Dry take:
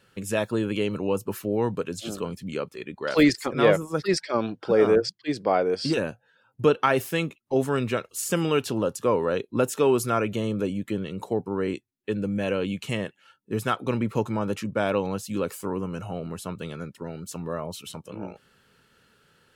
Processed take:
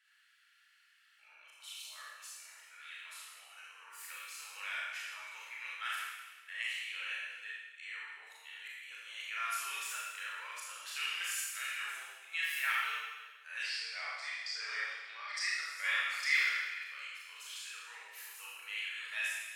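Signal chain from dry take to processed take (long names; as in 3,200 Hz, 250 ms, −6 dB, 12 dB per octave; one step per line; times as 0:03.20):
played backwards from end to start
four-pole ladder high-pass 1,700 Hz, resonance 55%
four-comb reverb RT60 1.3 s, combs from 27 ms, DRR −6.5 dB
level −4 dB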